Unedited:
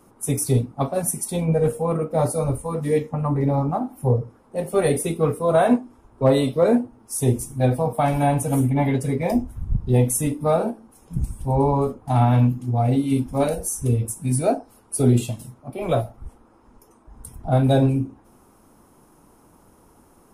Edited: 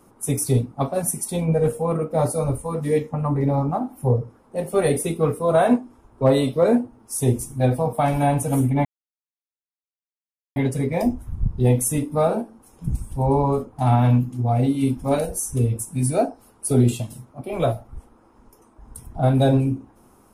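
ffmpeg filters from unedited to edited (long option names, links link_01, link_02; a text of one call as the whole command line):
ffmpeg -i in.wav -filter_complex "[0:a]asplit=2[link_01][link_02];[link_01]atrim=end=8.85,asetpts=PTS-STARTPTS,afade=type=out:start_time=8.846:duration=0.004:curve=hsin,apad=pad_dur=1.71[link_03];[link_02]atrim=start=8.85,asetpts=PTS-STARTPTS,afade=type=in:duration=0.004:curve=hsin[link_04];[link_03][link_04]concat=n=2:v=0:a=1" out.wav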